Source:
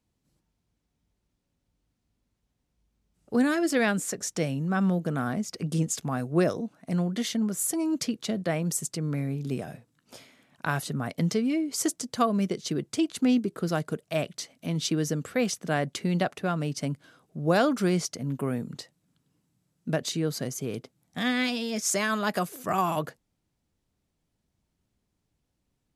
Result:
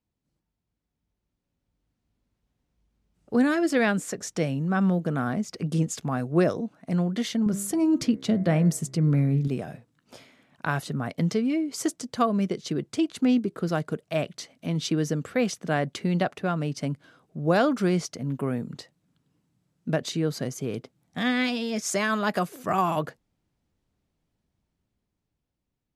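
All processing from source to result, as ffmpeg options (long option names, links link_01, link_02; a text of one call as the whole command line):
ffmpeg -i in.wav -filter_complex "[0:a]asettb=1/sr,asplit=3[link_01][link_02][link_03];[link_01]atrim=end=7.464[link_04];[link_02]atrim=start=7.46:end=9.48,asetpts=PTS-STARTPTS,afade=type=in:duration=0.004:curve=qsin,afade=type=out:start_time=2.016:duration=0.004:curve=qsin,lowshelf=frequency=230:gain=10.5,bandreject=frequency=66.57:width_type=h:width=4,bandreject=frequency=133.14:width_type=h:width=4,bandreject=frequency=199.71:width_type=h:width=4,bandreject=frequency=266.28:width_type=h:width=4,bandreject=frequency=332.85:width_type=h:width=4,bandreject=frequency=399.42:width_type=h:width=4,bandreject=frequency=465.99:width_type=h:width=4,bandreject=frequency=532.56:width_type=h:width=4,bandreject=frequency=599.13:width_type=h:width=4,bandreject=frequency=665.7:width_type=h:width=4,bandreject=frequency=732.27:width_type=h:width=4,bandreject=frequency=798.84:width_type=h:width=4,bandreject=frequency=865.41:width_type=h:width=4,bandreject=frequency=931.98:width_type=h:width=4,bandreject=frequency=998.55:width_type=h:width=4,bandreject=frequency=1065.12:width_type=h:width=4,bandreject=frequency=1131.69:width_type=h:width=4,bandreject=frequency=1198.26:width_type=h:width=4,bandreject=frequency=1264.83:width_type=h:width=4,bandreject=frequency=1331.4:width_type=h:width=4,bandreject=frequency=1397.97:width_type=h:width=4,bandreject=frequency=1464.54:width_type=h:width=4,bandreject=frequency=1531.11:width_type=h:width=4,bandreject=frequency=1597.68:width_type=h:width=4,bandreject=frequency=1664.25:width_type=h:width=4,bandreject=frequency=1730.82:width_type=h:width=4,bandreject=frequency=1797.39:width_type=h:width=4,bandreject=frequency=1863.96:width_type=h:width=4,bandreject=frequency=1930.53:width_type=h:width=4,bandreject=frequency=1997.1:width_type=h:width=4,bandreject=frequency=2063.67:width_type=h:width=4,bandreject=frequency=2130.24:width_type=h:width=4,bandreject=frequency=2196.81:width_type=h:width=4[link_05];[link_03]atrim=start=9.476[link_06];[link_04][link_05]acrossfade=duration=0.004:curve1=hsin:curve2=qsin[link_07];[link_07][link_06]acrossfade=duration=0.004:curve1=qsin:curve2=hsin,highshelf=frequency=5800:gain=-9,dynaudnorm=framelen=320:gausssize=11:maxgain=8.5dB,volume=-6dB" out.wav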